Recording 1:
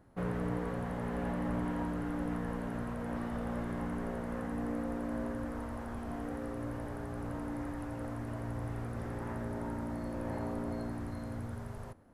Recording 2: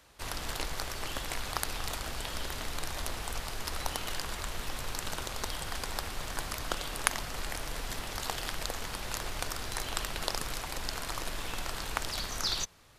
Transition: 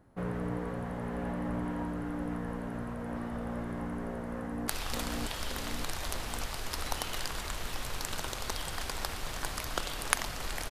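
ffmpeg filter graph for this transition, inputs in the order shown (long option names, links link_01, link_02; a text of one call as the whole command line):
ffmpeg -i cue0.wav -i cue1.wav -filter_complex "[0:a]apad=whole_dur=10.7,atrim=end=10.7,atrim=end=4.682[link_01];[1:a]atrim=start=1.618:end=7.64[link_02];[link_01][link_02]acrossfade=duration=0.004:curve1=hsin:curve2=hsin,asplit=2[link_03][link_04];[link_04]afade=type=in:start_time=4.34:duration=0.01,afade=type=out:start_time=4.68:duration=0.01,aecho=0:1:580|1160|1740|2320|2900|3480|4060|4640:0.794328|0.436881|0.240284|0.132156|0.072686|0.0399773|0.0219875|0.0120931[link_05];[link_03][link_05]amix=inputs=2:normalize=0" out.wav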